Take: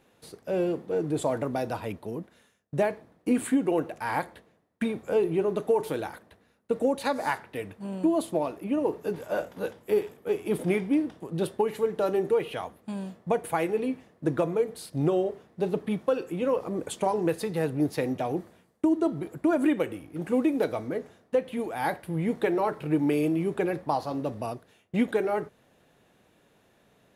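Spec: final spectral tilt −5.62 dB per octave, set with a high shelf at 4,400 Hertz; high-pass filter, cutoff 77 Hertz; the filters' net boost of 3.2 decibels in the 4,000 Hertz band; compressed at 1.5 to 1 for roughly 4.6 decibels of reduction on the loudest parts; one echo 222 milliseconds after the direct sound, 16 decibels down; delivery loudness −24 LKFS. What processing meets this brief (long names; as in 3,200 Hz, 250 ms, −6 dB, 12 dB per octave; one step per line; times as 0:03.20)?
high-pass filter 77 Hz
parametric band 4,000 Hz +6 dB
high-shelf EQ 4,400 Hz −4 dB
downward compressor 1.5 to 1, threshold −32 dBFS
single-tap delay 222 ms −16 dB
level +8 dB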